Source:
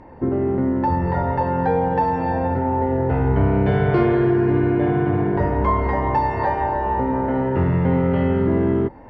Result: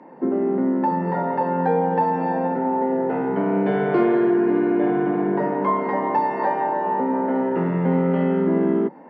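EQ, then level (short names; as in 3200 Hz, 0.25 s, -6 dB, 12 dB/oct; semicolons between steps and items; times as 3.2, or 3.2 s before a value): steep high-pass 160 Hz 72 dB/oct; high shelf 3600 Hz -10.5 dB; 0.0 dB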